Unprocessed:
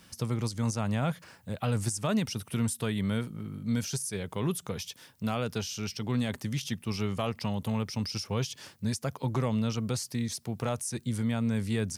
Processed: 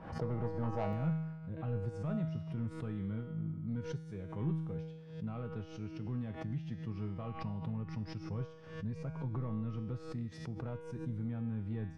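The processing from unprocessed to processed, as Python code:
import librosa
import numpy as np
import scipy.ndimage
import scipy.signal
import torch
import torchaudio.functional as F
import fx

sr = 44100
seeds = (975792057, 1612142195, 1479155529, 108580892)

y = scipy.signal.sosfilt(scipy.signal.butter(2, 1300.0, 'lowpass', fs=sr, output='sos'), x)
y = fx.peak_eq(y, sr, hz=710.0, db=fx.steps((0.0, 14.0), (0.93, -4.0)), octaves=1.7)
y = 10.0 ** (-21.0 / 20.0) * np.tanh(y / 10.0 ** (-21.0 / 20.0))
y = fx.low_shelf(y, sr, hz=180.0, db=8.5)
y = fx.comb_fb(y, sr, f0_hz=160.0, decay_s=1.1, harmonics='all', damping=0.0, mix_pct=90)
y = fx.pre_swell(y, sr, db_per_s=81.0)
y = y * 10.0 ** (6.5 / 20.0)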